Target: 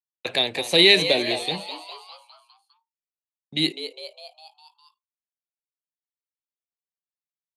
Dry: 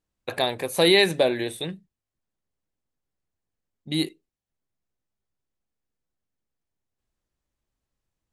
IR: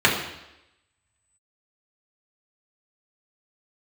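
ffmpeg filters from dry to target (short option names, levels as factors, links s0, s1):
-filter_complex "[0:a]agate=range=0.0398:threshold=0.00398:ratio=16:detection=peak,acrossover=split=290|710|1600[s0][s1][s2][s3];[s2]acompressor=threshold=0.00794:ratio=6[s4];[s0][s1][s4][s3]amix=inputs=4:normalize=0,atempo=1.1,aexciter=amount=3.2:drive=4.3:freq=2100,highpass=130,lowpass=4600,asplit=7[s5][s6][s7][s8][s9][s10][s11];[s6]adelay=203,afreqshift=120,volume=0.282[s12];[s7]adelay=406,afreqshift=240,volume=0.16[s13];[s8]adelay=609,afreqshift=360,volume=0.0912[s14];[s9]adelay=812,afreqshift=480,volume=0.0525[s15];[s10]adelay=1015,afreqshift=600,volume=0.0299[s16];[s11]adelay=1218,afreqshift=720,volume=0.017[s17];[s5][s12][s13][s14][s15][s16][s17]amix=inputs=7:normalize=0"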